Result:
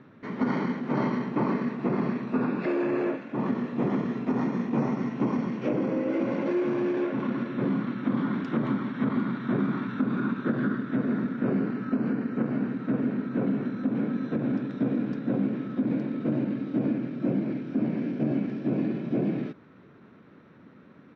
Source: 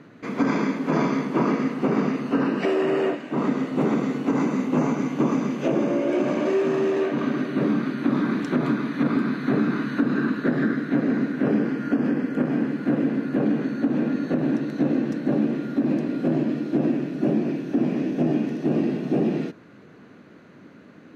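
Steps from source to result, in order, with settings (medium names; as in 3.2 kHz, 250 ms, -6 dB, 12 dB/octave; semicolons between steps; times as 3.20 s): pitch shift -1.5 st; low-pass 3.9 kHz 12 dB/octave; trim -4.5 dB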